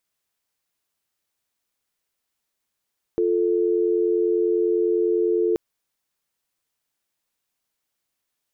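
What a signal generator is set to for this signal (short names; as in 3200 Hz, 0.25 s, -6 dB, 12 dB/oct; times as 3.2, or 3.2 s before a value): call progress tone dial tone, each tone -20.5 dBFS 2.38 s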